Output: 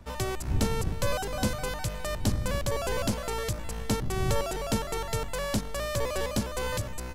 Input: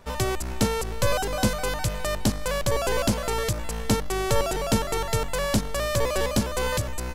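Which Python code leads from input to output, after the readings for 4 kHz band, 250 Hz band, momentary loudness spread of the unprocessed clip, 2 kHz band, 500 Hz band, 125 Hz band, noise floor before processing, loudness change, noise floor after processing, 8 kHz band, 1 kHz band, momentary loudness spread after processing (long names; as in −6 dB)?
−5.5 dB, −5.0 dB, 3 LU, −5.5 dB, −5.5 dB, −3.0 dB, −31 dBFS, −5.0 dB, −36 dBFS, −5.5 dB, −5.5 dB, 4 LU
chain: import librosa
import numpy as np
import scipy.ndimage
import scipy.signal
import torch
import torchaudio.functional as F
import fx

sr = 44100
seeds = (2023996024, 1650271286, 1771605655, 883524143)

y = fx.dmg_wind(x, sr, seeds[0], corner_hz=99.0, level_db=-30.0)
y = y * 10.0 ** (-5.5 / 20.0)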